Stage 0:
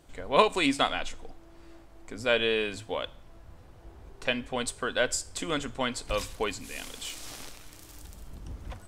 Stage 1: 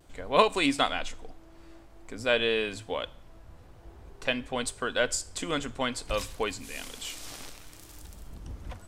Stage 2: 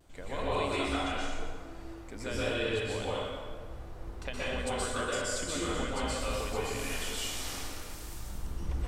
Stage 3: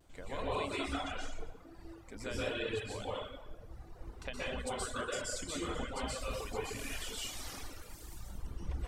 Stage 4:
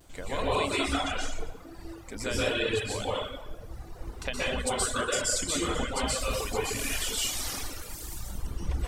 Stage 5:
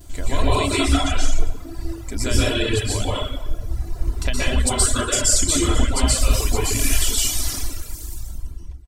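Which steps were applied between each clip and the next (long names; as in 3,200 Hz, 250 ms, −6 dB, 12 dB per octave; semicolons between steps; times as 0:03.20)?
pitch vibrato 0.53 Hz 25 cents
sub-octave generator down 2 octaves, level −3 dB; downward compressor 6 to 1, threshold −33 dBFS, peak gain reduction 17 dB; dense smooth reverb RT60 1.7 s, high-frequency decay 0.65×, pre-delay 110 ms, DRR −9 dB; level −4.5 dB
reverb reduction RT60 1.2 s; level −3 dB
high-shelf EQ 4,200 Hz +6.5 dB; level +8 dB
fade-out on the ending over 1.91 s; bass and treble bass +11 dB, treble +7 dB; comb filter 3 ms, depth 49%; level +4 dB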